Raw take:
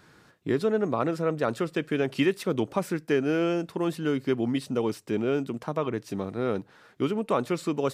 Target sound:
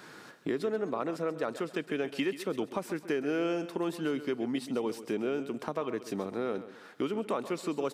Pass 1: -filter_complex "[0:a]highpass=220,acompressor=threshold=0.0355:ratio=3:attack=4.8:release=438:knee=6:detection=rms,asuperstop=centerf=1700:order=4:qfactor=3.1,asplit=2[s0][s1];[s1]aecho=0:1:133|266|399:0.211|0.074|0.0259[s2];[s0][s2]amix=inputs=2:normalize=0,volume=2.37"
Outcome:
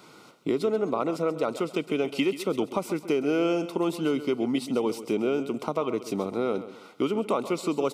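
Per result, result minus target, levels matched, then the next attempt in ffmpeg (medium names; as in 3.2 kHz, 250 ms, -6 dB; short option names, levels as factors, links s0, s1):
compression: peak gain reduction -6 dB; 2 kHz band -3.5 dB
-filter_complex "[0:a]highpass=220,acompressor=threshold=0.0126:ratio=3:attack=4.8:release=438:knee=6:detection=rms,asuperstop=centerf=1700:order=4:qfactor=3.1,asplit=2[s0][s1];[s1]aecho=0:1:133|266|399:0.211|0.074|0.0259[s2];[s0][s2]amix=inputs=2:normalize=0,volume=2.37"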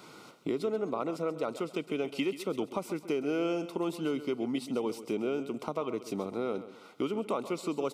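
2 kHz band -3.5 dB
-filter_complex "[0:a]highpass=220,acompressor=threshold=0.0126:ratio=3:attack=4.8:release=438:knee=6:detection=rms,asplit=2[s0][s1];[s1]aecho=0:1:133|266|399:0.211|0.074|0.0259[s2];[s0][s2]amix=inputs=2:normalize=0,volume=2.37"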